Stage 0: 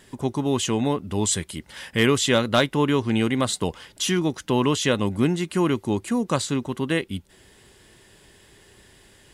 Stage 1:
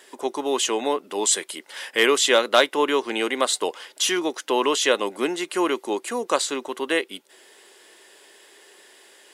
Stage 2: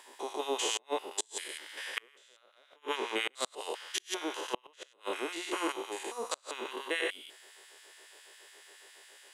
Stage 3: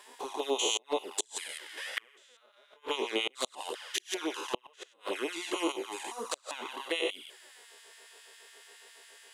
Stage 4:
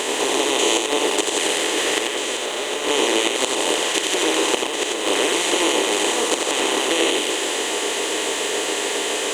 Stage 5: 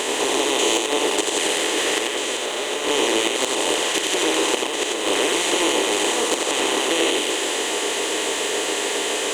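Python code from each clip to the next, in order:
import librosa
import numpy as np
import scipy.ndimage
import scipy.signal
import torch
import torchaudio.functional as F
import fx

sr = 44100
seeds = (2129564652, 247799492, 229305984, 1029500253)

y1 = scipy.signal.sosfilt(scipy.signal.butter(4, 370.0, 'highpass', fs=sr, output='sos'), x)
y1 = y1 * librosa.db_to_amplitude(3.5)
y2 = fx.spec_steps(y1, sr, hold_ms=200)
y2 = fx.filter_lfo_highpass(y2, sr, shape='sine', hz=7.2, low_hz=360.0, high_hz=1600.0, q=0.83)
y2 = fx.gate_flip(y2, sr, shuts_db=-15.0, range_db=-35)
y2 = y2 * librosa.db_to_amplitude(-2.5)
y3 = fx.env_flanger(y2, sr, rest_ms=5.5, full_db=-30.5)
y3 = y3 * librosa.db_to_amplitude(4.0)
y4 = fx.bin_compress(y3, sr, power=0.2)
y4 = y4 + 10.0 ** (-4.0 / 20.0) * np.pad(y4, (int(88 * sr / 1000.0), 0))[:len(y4)]
y4 = y4 * librosa.db_to_amplitude(4.0)
y5 = 10.0 ** (-8.5 / 20.0) * np.tanh(y4 / 10.0 ** (-8.5 / 20.0))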